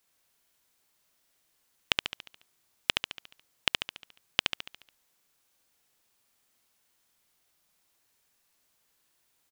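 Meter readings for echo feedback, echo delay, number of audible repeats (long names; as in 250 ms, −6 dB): 51%, 71 ms, 6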